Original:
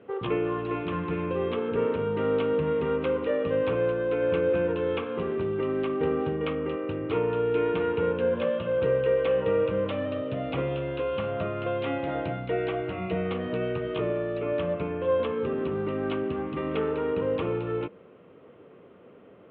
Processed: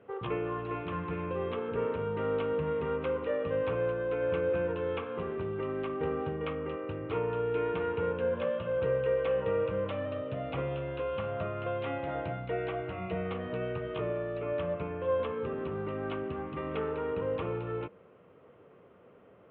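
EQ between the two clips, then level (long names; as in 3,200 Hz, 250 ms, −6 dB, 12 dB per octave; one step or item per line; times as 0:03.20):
parametric band 280 Hz −7.5 dB 1.7 octaves
high-shelf EQ 3,100 Hz −11.5 dB
−1.0 dB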